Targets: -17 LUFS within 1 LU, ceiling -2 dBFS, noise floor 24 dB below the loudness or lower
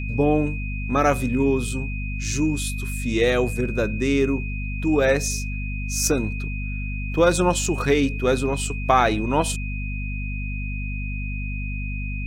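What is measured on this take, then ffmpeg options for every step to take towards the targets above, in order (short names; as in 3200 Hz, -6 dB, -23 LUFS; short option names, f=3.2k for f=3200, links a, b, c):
hum 50 Hz; harmonics up to 250 Hz; hum level -26 dBFS; steady tone 2500 Hz; tone level -34 dBFS; loudness -23.5 LUFS; peak -4.0 dBFS; loudness target -17.0 LUFS
-> -af "bandreject=f=50:t=h:w=6,bandreject=f=100:t=h:w=6,bandreject=f=150:t=h:w=6,bandreject=f=200:t=h:w=6,bandreject=f=250:t=h:w=6"
-af "bandreject=f=2.5k:w=30"
-af "volume=6.5dB,alimiter=limit=-2dB:level=0:latency=1"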